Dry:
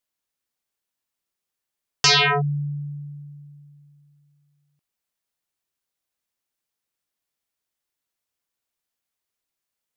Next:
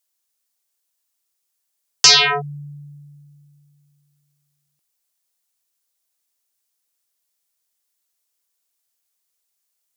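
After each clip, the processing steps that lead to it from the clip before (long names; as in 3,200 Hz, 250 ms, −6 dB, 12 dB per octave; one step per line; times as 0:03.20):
bass and treble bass −10 dB, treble +10 dB
level +1 dB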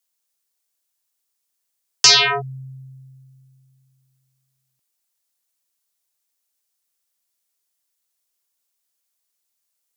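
frequency shifter −13 Hz
level −1 dB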